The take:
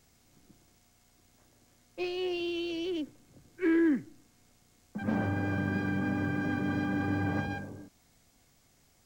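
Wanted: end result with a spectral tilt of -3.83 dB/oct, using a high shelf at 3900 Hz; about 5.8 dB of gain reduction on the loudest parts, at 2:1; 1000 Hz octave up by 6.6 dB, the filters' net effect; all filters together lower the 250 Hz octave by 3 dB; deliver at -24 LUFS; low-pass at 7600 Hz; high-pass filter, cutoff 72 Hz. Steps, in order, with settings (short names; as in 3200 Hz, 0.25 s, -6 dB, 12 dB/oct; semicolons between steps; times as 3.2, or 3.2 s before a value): HPF 72 Hz; LPF 7600 Hz; bell 250 Hz -5 dB; bell 1000 Hz +9 dB; high shelf 3900 Hz +5.5 dB; compressor 2:1, threshold -35 dBFS; gain +12.5 dB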